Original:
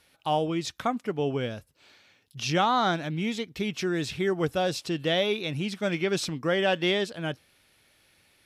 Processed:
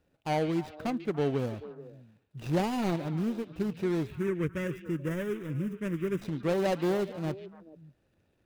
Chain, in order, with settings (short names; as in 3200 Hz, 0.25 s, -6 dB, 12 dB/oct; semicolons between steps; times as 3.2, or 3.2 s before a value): median filter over 41 samples; 4.07–6.22 fixed phaser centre 1800 Hz, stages 4; on a send: delay with a stepping band-pass 0.144 s, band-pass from 3000 Hz, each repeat -1.4 oct, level -8 dB